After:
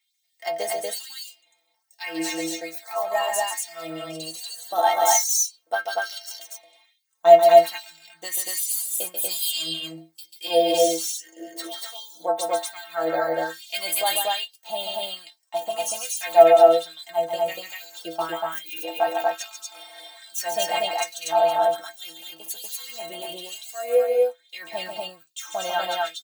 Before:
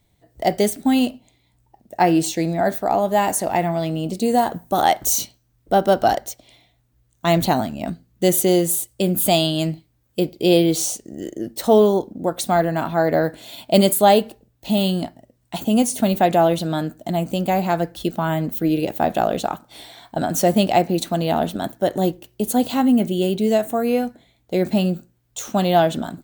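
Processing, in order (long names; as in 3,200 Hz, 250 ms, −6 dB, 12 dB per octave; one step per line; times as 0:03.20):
stiff-string resonator 160 Hz, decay 0.28 s, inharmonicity 0.008
auto-filter high-pass sine 1.2 Hz 610–5,900 Hz
loudspeakers that aren't time-aligned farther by 48 metres −6 dB, 82 metres −1 dB
level +5.5 dB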